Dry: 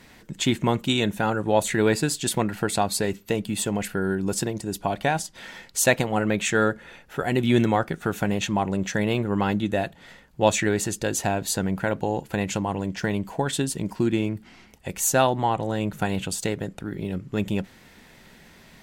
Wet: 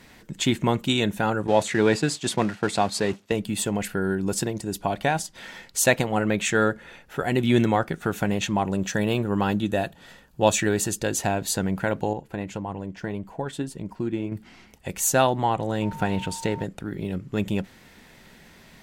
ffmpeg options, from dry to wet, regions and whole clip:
-filter_complex "[0:a]asettb=1/sr,asplit=3[a][b][c];[a]atrim=end=1.474[d];[b]atrim=start=1.47:end=3.32,asetpts=PTS-STARTPTS,afade=t=in:d=0.004:c=qsin,afade=t=out:st=1.846:d=0.004:c=qsin,aeval=exprs='val(0)+0.5*0.0266*sgn(val(0))':c=same,agate=range=-33dB:threshold=-24dB:ratio=3:release=100:detection=peak,highpass=100,lowpass=7k[e];[c]atrim=start=3.316[f];[d][e]acrossfade=d=0.004:c1=hsin:c2=qsin[g];[g][f]acrossfade=d=0.004:c1=qsin:c2=hsin,asettb=1/sr,asplit=3[h][i][j];[h]atrim=end=8.654[k];[i]atrim=start=8.65:end=11,asetpts=PTS-STARTPTS,afade=t=in:d=0.004:c=qsin,afade=t=out:st=2.346:d=0.004:c=qsin,highshelf=f=9.8k:g=6.5,bandreject=f=2.1k:w=8[l];[j]atrim=start=10.996[m];[k][l]acrossfade=d=0.004:c1=hsin:c2=qsin[n];[n][m]acrossfade=d=0.004:c1=qsin:c2=hsin,asettb=1/sr,asplit=3[o][p][q];[o]atrim=end=12.134[r];[p]atrim=start=12.13:end=14.32,asetpts=PTS-STARTPTS,afade=t=in:d=0.004:c=qsin,afade=t=out:st=2.186:d=0.004:c=qsin,highshelf=f=2.3k:g=-9.5,flanger=delay=0.7:depth=2.9:regen=73:speed=1.7:shape=triangular[s];[q]atrim=start=14.316[t];[r][s]acrossfade=d=0.004:c1=hsin:c2=qsin[u];[u][t]acrossfade=d=0.004:c1=qsin:c2=hsin,asettb=1/sr,asplit=3[v][w][x];[v]atrim=end=15.824[y];[w]atrim=start=15.82:end=16.64,asetpts=PTS-STARTPTS,afade=t=in:d=0.004:c=qsin,afade=t=out:st=0.816:d=0.004:c=qsin,aeval=exprs='val(0)+0.5*0.00944*sgn(val(0))':c=same,aemphasis=mode=reproduction:type=cd,aeval=exprs='val(0)+0.0141*sin(2*PI*910*n/s)':c=same[z];[x]atrim=start=16.636[aa];[y][z]acrossfade=d=0.004:c1=hsin:c2=qsin[ab];[ab][aa]acrossfade=d=0.004:c1=qsin:c2=hsin"

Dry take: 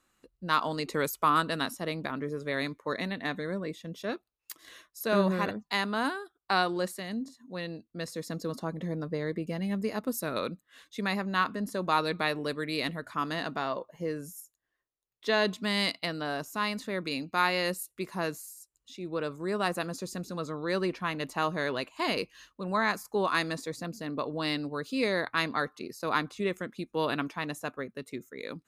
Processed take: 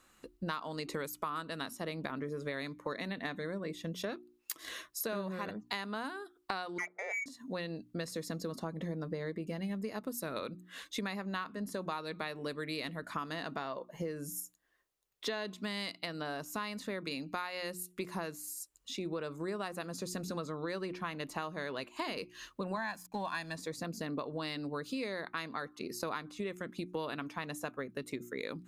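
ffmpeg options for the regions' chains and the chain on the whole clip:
-filter_complex "[0:a]asettb=1/sr,asplit=3[a][b][c];[a]atrim=end=6.784[d];[b]atrim=start=6.78:end=7.26,asetpts=PTS-STARTPTS,afade=t=in:d=0.004:c=qsin,afade=t=out:st=0.476:d=0.004:c=qsin,lowpass=f=2.1k:t=q:w=0.5098,lowpass=f=2.1k:t=q:w=0.6013,lowpass=f=2.1k:t=q:w=0.9,lowpass=f=2.1k:t=q:w=2.563,afreqshift=-2500,adynamicsmooth=sensitivity=4.5:basefreq=1.2k,lowshelf=f=290:t=q:w=3:g=-13.5[e];[c]atrim=start=7.256[f];[d][e]acrossfade=d=0.004:c1=hsin:c2=qsin[g];[g][f]acrossfade=d=0.004:c1=qsin:c2=hsin,asettb=1/sr,asplit=3[h][i][j];[h]atrim=end=22.764[k];[i]atrim=start=22.76:end=23.56,asetpts=PTS-STARTPTS,afade=t=in:d=0.004:c=qsin,afade=t=out:st=0.796:d=0.004:c=qsin,aecho=1:1:1.2:0.79,atrim=end_sample=35280,aeval=exprs='sgn(val(0))*max(abs(val(0))-0.00168,0)':c=same[l];[j]atrim=start=23.556[m];[k][l]acrossfade=d=0.004:c1=hsin:c2=qsin[n];[n][m]acrossfade=d=0.004:c1=qsin:c2=hsin,bandreject=f=60:t=h:w=6,bandreject=f=120:t=h:w=6,bandreject=f=180:t=h:w=6,bandreject=f=240:t=h:w=6,bandreject=f=300:t=h:w=6,bandreject=f=360:t=h:w=6,acompressor=threshold=-42dB:ratio=10,volume=7dB"

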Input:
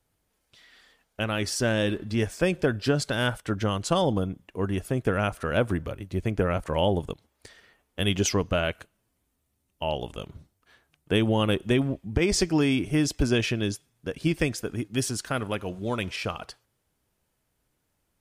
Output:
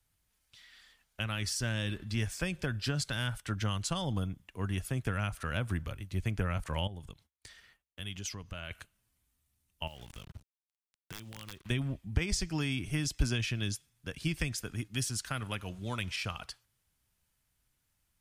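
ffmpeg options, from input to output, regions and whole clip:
-filter_complex "[0:a]asettb=1/sr,asplit=3[a][b][c];[a]atrim=end=6.874[d];[b]atrim=start=6.87:end=8.71,asetpts=PTS-STARTPTS,afade=t=in:d=0.004:c=qsin,afade=t=out:st=1.836:d=0.004:c=qsin,agate=range=-33dB:threshold=-59dB:ratio=3:release=100:detection=peak,acompressor=threshold=-42dB:ratio=2:attack=3.2:release=140:knee=1:detection=peak[e];[c]atrim=start=8.706[f];[d][e]acrossfade=d=0.004:c1=hsin:c2=qsin[g];[g][f]acrossfade=d=0.004:c1=qsin:c2=hsin,asettb=1/sr,asplit=3[h][i][j];[h]atrim=end=9.874[k];[i]atrim=start=9.87:end=11.7,asetpts=PTS-STARTPTS,afade=t=in:d=0.004:c=qsin,afade=t=out:st=1.826:d=0.004:c=qsin,acrusher=bits=6:mix=0:aa=0.5,aeval=exprs='(mod(4.47*val(0)+1,2)-1)/4.47':c=same,acompressor=threshold=-36dB:ratio=16:attack=3.2:release=140:knee=1:detection=peak[l];[j]atrim=start=11.696[m];[k][l]acrossfade=d=0.004:c1=hsin:c2=qsin[n];[n][m]acrossfade=d=0.004:c1=qsin:c2=hsin,equalizer=f=430:t=o:w=2.4:g=-13.5,acrossover=split=200[o][p];[p]acompressor=threshold=-32dB:ratio=6[q];[o][q]amix=inputs=2:normalize=0"

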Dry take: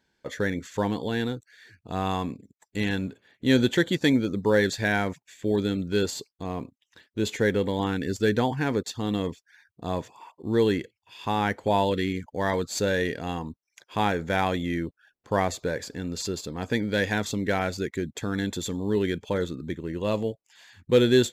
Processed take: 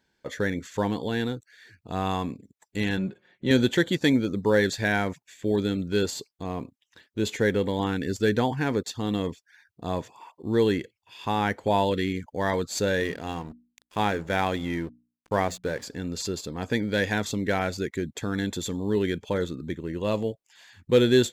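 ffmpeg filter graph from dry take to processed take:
-filter_complex "[0:a]asettb=1/sr,asplit=3[a][b][c];[a]atrim=end=2.974[d];[b]atrim=start=2.97:end=3.51,asetpts=PTS-STARTPTS,afade=t=in:d=0.004:c=qsin,afade=t=out:st=0.536:d=0.004:c=qsin,lowpass=f=2.5k:p=1,aecho=1:1:5.5:0.65,atrim=end_sample=23814[e];[c]atrim=start=3.506[f];[d][e]acrossfade=d=0.004:c1=hsin:c2=qsin[g];[g][f]acrossfade=d=0.004:c1=qsin:c2=hsin,asettb=1/sr,asplit=3[h][i][j];[h]atrim=end=13.004[k];[i]atrim=start=13:end=15.84,asetpts=PTS-STARTPTS,afade=t=in:d=0.004:c=qsin,afade=t=out:st=2.836:d=0.004:c=qsin,aeval=exprs='sgn(val(0))*max(abs(val(0))-0.00596,0)':c=same,bandreject=f=60:t=h:w=6,bandreject=f=120:t=h:w=6,bandreject=f=180:t=h:w=6,bandreject=f=240:t=h:w=6,bandreject=f=300:t=h:w=6[l];[j]atrim=start=15.836[m];[k][l]acrossfade=d=0.004:c1=hsin:c2=qsin[n];[n][m]acrossfade=d=0.004:c1=qsin:c2=hsin"

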